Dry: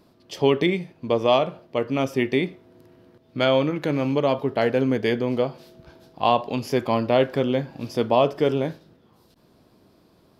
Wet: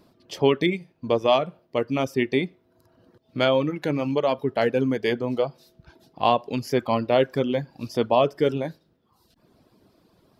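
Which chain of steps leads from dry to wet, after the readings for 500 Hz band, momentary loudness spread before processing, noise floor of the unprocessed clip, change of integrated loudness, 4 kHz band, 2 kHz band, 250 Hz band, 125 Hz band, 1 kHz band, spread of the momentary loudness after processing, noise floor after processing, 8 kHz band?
-1.0 dB, 8 LU, -59 dBFS, -1.0 dB, -1.0 dB, -1.0 dB, -1.5 dB, -2.0 dB, -0.5 dB, 8 LU, -65 dBFS, n/a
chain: reverb removal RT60 0.94 s

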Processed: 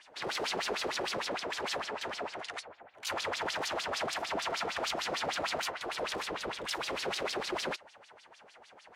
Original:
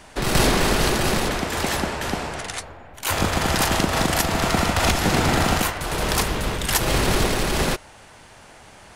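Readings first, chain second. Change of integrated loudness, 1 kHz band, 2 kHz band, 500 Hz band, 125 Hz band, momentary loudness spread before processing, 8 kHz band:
-13.5 dB, -12.5 dB, -12.0 dB, -12.0 dB, -29.0 dB, 8 LU, -16.5 dB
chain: wavefolder -18 dBFS; LFO band-pass sine 6.6 Hz 420–5100 Hz; gain -2 dB

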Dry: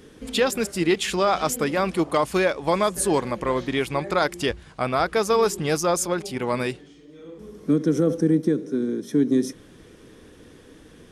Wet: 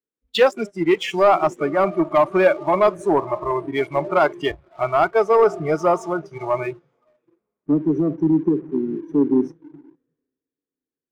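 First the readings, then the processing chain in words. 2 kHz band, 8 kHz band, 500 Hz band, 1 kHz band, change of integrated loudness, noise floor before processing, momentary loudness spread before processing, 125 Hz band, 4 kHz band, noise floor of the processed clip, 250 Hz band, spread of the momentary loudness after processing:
+1.5 dB, under -15 dB, +4.5 dB, +4.5 dB, +3.5 dB, -49 dBFS, 7 LU, -1.0 dB, -2.5 dB, under -85 dBFS, +2.0 dB, 9 LU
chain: LPF 2200 Hz 12 dB/oct; low shelf 160 Hz -11 dB; on a send: diffused feedback echo 0.556 s, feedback 53%, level -15 dB; on the sum: dynamic EQ 560 Hz, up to +4 dB, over -32 dBFS, Q 1.9; spectral noise reduction 21 dB; sample leveller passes 1; in parallel at -2.5 dB: compressor, threshold -28 dBFS, peak gain reduction 14 dB; on the sum: three-band expander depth 70%

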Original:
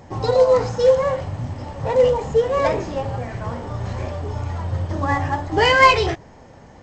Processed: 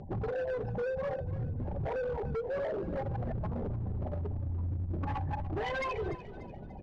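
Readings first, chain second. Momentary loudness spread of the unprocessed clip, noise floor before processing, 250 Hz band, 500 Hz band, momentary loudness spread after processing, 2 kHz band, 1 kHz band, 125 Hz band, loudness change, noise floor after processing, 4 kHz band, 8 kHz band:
15 LU, -45 dBFS, -10.0 dB, -17.0 dB, 3 LU, -20.0 dB, -19.5 dB, -9.0 dB, -16.0 dB, -45 dBFS, -25.5 dB, n/a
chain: formant sharpening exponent 3; notch 920 Hz, Q 14; comb 5.1 ms, depth 34%; compressor 6:1, threshold -29 dBFS, peak gain reduction 20 dB; hard clip -31 dBFS, distortion -11 dB; air absorption 110 m; on a send: frequency-shifting echo 0.293 s, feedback 42%, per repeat -31 Hz, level -14.5 dB

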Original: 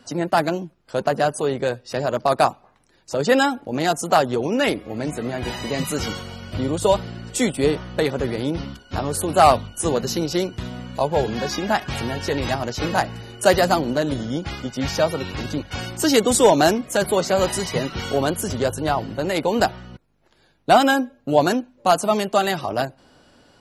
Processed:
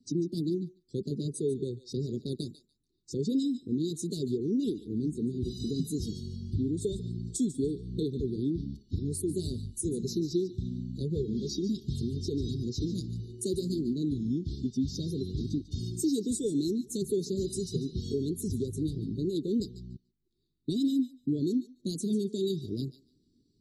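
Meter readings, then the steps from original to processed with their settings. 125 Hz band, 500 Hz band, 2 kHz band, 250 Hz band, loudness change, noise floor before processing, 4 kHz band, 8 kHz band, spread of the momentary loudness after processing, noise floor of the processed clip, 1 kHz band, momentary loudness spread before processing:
-5.0 dB, -14.5 dB, under -40 dB, -5.5 dB, -11.0 dB, -59 dBFS, -15.5 dB, -12.0 dB, 7 LU, -72 dBFS, under -40 dB, 11 LU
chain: Chebyshev band-stop 400–3700 Hz, order 4; compressor 6:1, threshold -29 dBFS, peak gain reduction 12.5 dB; thinning echo 0.145 s, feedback 28%, high-pass 720 Hz, level -9 dB; spectral expander 1.5:1; gain -1.5 dB

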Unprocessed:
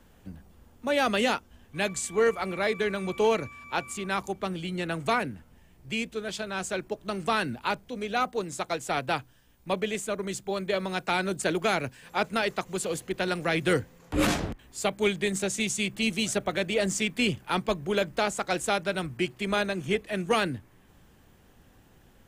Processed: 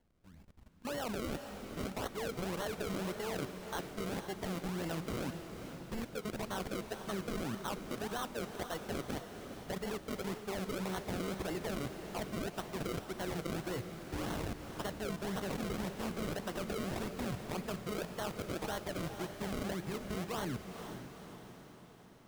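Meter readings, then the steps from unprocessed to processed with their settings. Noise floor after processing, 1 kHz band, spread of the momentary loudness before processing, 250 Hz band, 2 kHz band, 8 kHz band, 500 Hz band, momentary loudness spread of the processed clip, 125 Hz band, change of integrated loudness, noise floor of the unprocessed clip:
-56 dBFS, -12.0 dB, 7 LU, -8.0 dB, -14.5 dB, -12.5 dB, -11.5 dB, 5 LU, -5.5 dB, -11.0 dB, -58 dBFS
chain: decimation with a swept rate 35×, swing 100% 1.8 Hz; level quantiser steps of 18 dB; diffused feedback echo 0.467 s, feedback 56%, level -8 dB; gain -2 dB

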